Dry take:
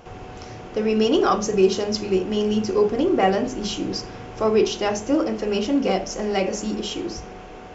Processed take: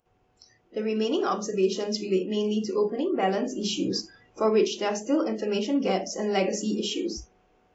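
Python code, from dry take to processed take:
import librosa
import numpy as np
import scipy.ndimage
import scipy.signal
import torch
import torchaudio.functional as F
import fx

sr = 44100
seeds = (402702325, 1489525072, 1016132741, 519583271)

y = fx.noise_reduce_blind(x, sr, reduce_db=24)
y = fx.rider(y, sr, range_db=4, speed_s=0.5)
y = y * 10.0 ** (-4.5 / 20.0)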